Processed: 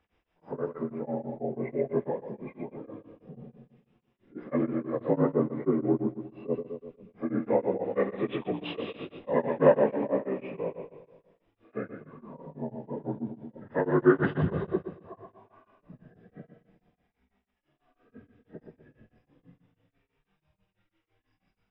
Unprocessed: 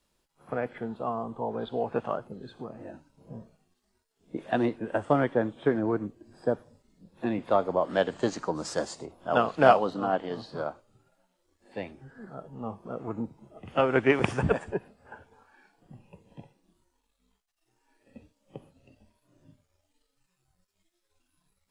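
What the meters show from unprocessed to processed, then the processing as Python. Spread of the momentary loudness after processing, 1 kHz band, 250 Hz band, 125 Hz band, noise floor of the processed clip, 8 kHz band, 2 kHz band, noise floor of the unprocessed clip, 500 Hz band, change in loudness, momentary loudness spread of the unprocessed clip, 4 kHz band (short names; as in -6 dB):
22 LU, -7.5 dB, +1.5 dB, +1.0 dB, -81 dBFS, under -30 dB, -5.5 dB, -77 dBFS, 0.0 dB, -1.0 dB, 18 LU, -7.5 dB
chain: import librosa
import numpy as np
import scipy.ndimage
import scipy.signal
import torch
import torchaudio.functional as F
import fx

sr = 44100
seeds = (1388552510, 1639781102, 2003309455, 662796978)

p1 = fx.partial_stretch(x, sr, pct=80)
p2 = scipy.signal.savgol_filter(p1, 25, 4, mode='constant')
p3 = fx.dynamic_eq(p2, sr, hz=900.0, q=1.2, threshold_db=-43.0, ratio=4.0, max_db=-7)
p4 = p3 + fx.echo_feedback(p3, sr, ms=121, feedback_pct=51, wet_db=-7.0, dry=0)
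p5 = p4 * np.abs(np.cos(np.pi * 6.1 * np.arange(len(p4)) / sr))
y = p5 * 10.0 ** (4.5 / 20.0)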